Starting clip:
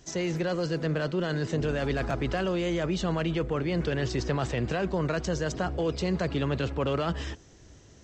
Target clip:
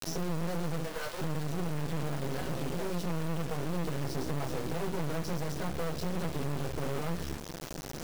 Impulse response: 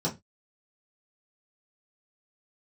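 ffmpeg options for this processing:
-filter_complex "[0:a]asettb=1/sr,asplit=3[s0][s1][s2];[s0]atrim=end=0.824[s3];[s1]atrim=start=0.82:end=2.98,asetpts=PTS-STARTPTS,afade=t=in:d=0.004:c=qsin,afade=t=out:st=2.156:d=0.004:c=qsin,acrossover=split=560[s4][s5];[s4]adelay=390[s6];[s6][s5]amix=inputs=2:normalize=0,atrim=end_sample=95256[s7];[s2]atrim=start=2.976[s8];[s3][s7]acrossfade=d=0.004:c1=hsin:c2=qsin[s9];[s9][s8]acrossfade=d=0.004:c1=qsin:c2=hsin[s10];[1:a]atrim=start_sample=2205,atrim=end_sample=6174[s11];[s10][s11]afir=irnorm=-1:irlink=0,adynamicequalizer=threshold=0.0178:dfrequency=220:dqfactor=7.9:tfrequency=220:tqfactor=7.9:attack=5:release=100:ratio=0.375:range=2.5:mode=cutabove:tftype=bell,acrusher=bits=5:mode=log:mix=0:aa=0.000001,aeval=exprs='(tanh(6.31*val(0)+0.45)-tanh(0.45))/6.31':c=same,lowshelf=f=63:g=-9.5,acompressor=threshold=0.0282:ratio=2,acrusher=bits=4:dc=4:mix=0:aa=0.000001,acompressor=mode=upward:threshold=0.0282:ratio=2.5"

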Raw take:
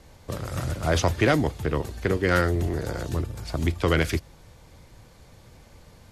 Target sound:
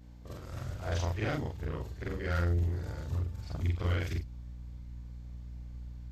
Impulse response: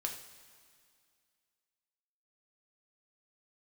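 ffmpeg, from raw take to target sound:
-af "afftfilt=real='re':imag='-im':win_size=4096:overlap=0.75,equalizer=f=10000:w=3.3:g=-14.5,aeval=exprs='val(0)+0.00794*(sin(2*PI*60*n/s)+sin(2*PI*2*60*n/s)/2+sin(2*PI*3*60*n/s)/3+sin(2*PI*4*60*n/s)/4+sin(2*PI*5*60*n/s)/5)':c=same,asubboost=boost=3:cutoff=160,asoftclip=type=hard:threshold=0.237,volume=0.376"

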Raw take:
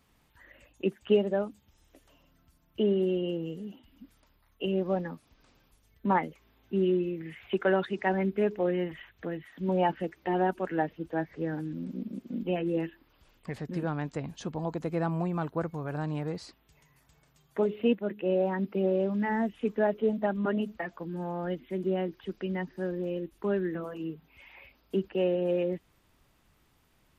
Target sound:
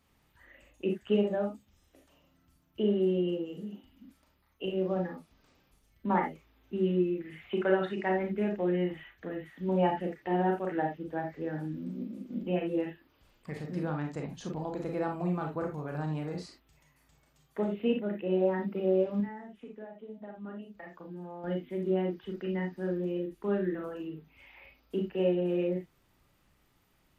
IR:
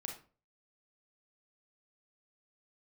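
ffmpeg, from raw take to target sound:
-filter_complex "[0:a]asettb=1/sr,asplit=3[s0][s1][s2];[s0]atrim=end=19.204[s3];[s1]atrim=start=19.2:end=21.44,asetpts=PTS-STARTPTS,afade=t=in:d=0.004:c=qsin,afade=t=out:st=2.236:d=0.004:c=qsin,acompressor=threshold=0.00891:ratio=6[s4];[s2]atrim=start=21.436[s5];[s3][s4]acrossfade=d=0.004:c1=hsin:c2=qsin[s6];[s6][s5]acrossfade=d=0.004:c1=qsin:c2=hsin[s7];[1:a]atrim=start_sample=2205,atrim=end_sample=3969[s8];[s7][s8]afir=irnorm=-1:irlink=0"

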